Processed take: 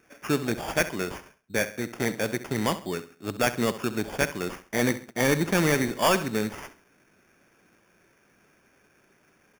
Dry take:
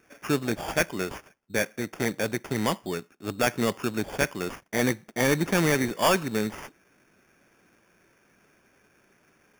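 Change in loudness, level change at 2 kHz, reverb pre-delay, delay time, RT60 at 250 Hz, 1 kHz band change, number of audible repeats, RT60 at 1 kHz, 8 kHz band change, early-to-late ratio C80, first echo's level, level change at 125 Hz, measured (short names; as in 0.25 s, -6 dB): 0.0 dB, 0.0 dB, none, 67 ms, none, 0.0 dB, 3, none, 0.0 dB, none, -14.0 dB, 0.0 dB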